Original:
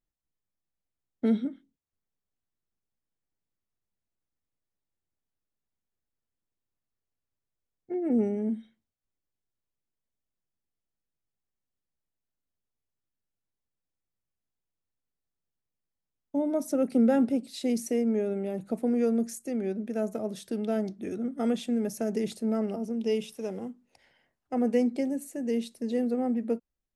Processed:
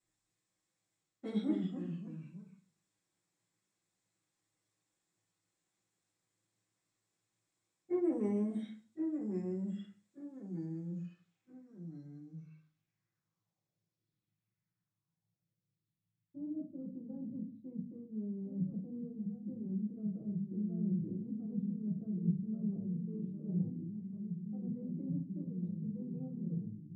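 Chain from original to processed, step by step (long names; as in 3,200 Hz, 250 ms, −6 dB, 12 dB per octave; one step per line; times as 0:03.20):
dynamic equaliser 1,700 Hz, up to −5 dB, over −53 dBFS, Q 1.3
reversed playback
downward compressor 5 to 1, threshold −36 dBFS, peak gain reduction 15.5 dB
reversed playback
harmonic generator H 5 −28 dB, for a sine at −27 dBFS
low-pass filter sweep 8,100 Hz → 150 Hz, 0:10.83–0:12.94
delay with pitch and tempo change per echo 100 ms, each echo −2 semitones, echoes 3, each echo −6 dB
convolution reverb RT60 0.35 s, pre-delay 3 ms, DRR −10 dB
level −3 dB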